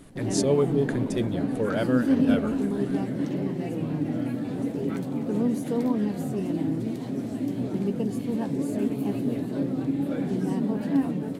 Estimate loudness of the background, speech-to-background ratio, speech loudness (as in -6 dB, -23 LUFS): -27.5 LUFS, -1.0 dB, -28.5 LUFS